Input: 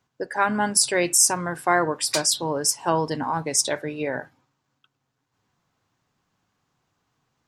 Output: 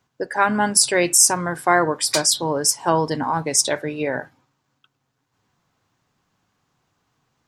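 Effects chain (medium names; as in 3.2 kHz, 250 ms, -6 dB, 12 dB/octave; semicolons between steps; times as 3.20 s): 1.30–3.38 s: band-stop 2.7 kHz, Q 11; trim +3.5 dB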